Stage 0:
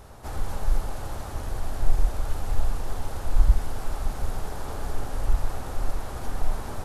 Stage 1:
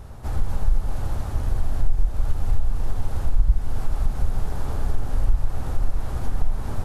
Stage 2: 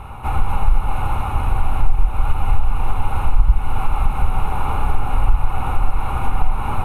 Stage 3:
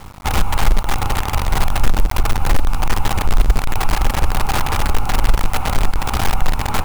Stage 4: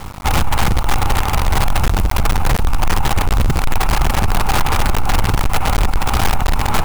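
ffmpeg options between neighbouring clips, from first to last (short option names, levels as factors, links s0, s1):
-af "bass=f=250:g=9,treble=f=4000:g=-2,acompressor=threshold=0.2:ratio=3"
-af "superequalizer=9b=3.98:10b=3.55:12b=3.98:14b=0.251:15b=0.316,volume=1.68"
-af "aeval=exprs='val(0)+0.0224*(sin(2*PI*50*n/s)+sin(2*PI*2*50*n/s)/2+sin(2*PI*3*50*n/s)/3+sin(2*PI*4*50*n/s)/4+sin(2*PI*5*50*n/s)/5)':c=same,acrusher=bits=4:dc=4:mix=0:aa=0.000001"
-af "aeval=exprs='0.841*sin(PI/2*3.16*val(0)/0.841)':c=same,volume=0.422"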